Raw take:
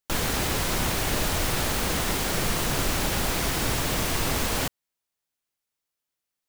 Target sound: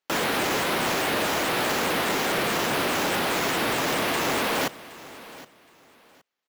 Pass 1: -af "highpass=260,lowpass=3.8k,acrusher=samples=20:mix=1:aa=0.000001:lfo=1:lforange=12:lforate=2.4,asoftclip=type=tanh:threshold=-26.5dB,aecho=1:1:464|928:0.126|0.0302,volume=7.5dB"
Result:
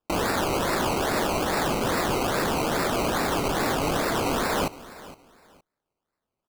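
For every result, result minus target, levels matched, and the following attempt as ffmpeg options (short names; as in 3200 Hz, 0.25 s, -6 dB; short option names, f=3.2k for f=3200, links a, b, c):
decimation with a swept rate: distortion +15 dB; echo 0.304 s early
-af "highpass=260,lowpass=3.8k,acrusher=samples=4:mix=1:aa=0.000001:lfo=1:lforange=2.4:lforate=2.4,asoftclip=type=tanh:threshold=-26.5dB,aecho=1:1:464|928:0.126|0.0302,volume=7.5dB"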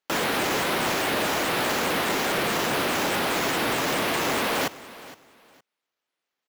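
echo 0.304 s early
-af "highpass=260,lowpass=3.8k,acrusher=samples=4:mix=1:aa=0.000001:lfo=1:lforange=2.4:lforate=2.4,asoftclip=type=tanh:threshold=-26.5dB,aecho=1:1:768|1536:0.126|0.0302,volume=7.5dB"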